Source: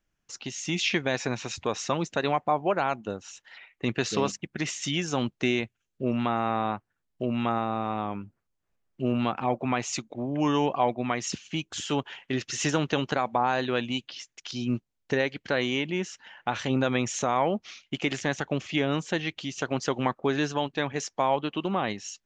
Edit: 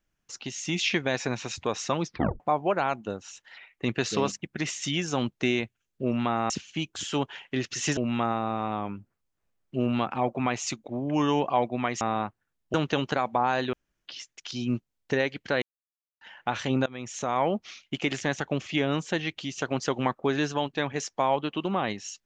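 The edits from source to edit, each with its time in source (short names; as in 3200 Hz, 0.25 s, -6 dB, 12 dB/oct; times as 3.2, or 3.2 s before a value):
2.04 tape stop 0.36 s
6.5–7.23 swap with 11.27–12.74
13.73–14.06 room tone
15.62–16.21 mute
16.86–17.45 fade in, from -23.5 dB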